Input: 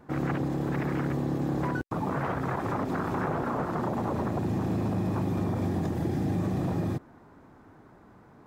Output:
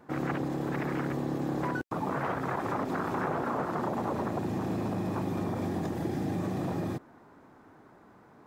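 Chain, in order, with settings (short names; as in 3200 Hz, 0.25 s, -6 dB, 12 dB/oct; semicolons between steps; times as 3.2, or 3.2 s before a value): low shelf 130 Hz -11.5 dB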